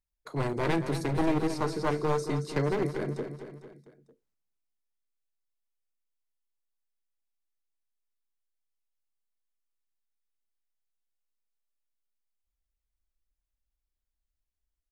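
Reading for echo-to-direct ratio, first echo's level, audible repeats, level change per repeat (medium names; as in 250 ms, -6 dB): -8.5 dB, -10.0 dB, 4, -5.5 dB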